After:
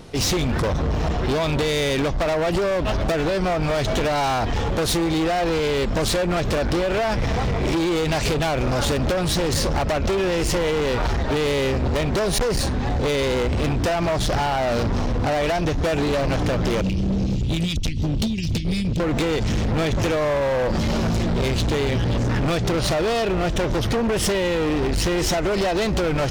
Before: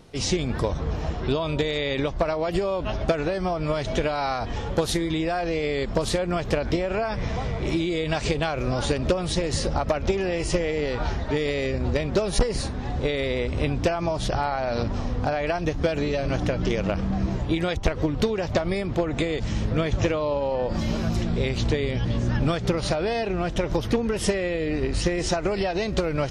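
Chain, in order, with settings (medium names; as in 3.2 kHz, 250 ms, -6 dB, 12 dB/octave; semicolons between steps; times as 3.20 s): 16.81–19.00 s: inverse Chebyshev band-stop 500–1400 Hz, stop band 50 dB; hard clipper -28 dBFS, distortion -6 dB; trim +9 dB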